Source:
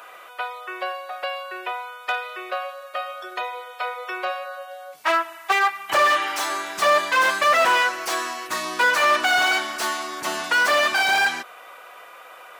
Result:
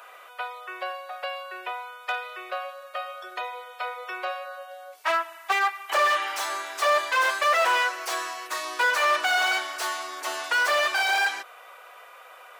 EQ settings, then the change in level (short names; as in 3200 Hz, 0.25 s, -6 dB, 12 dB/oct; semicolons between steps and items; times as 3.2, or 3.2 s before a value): HPF 390 Hz 24 dB/oct; -4.0 dB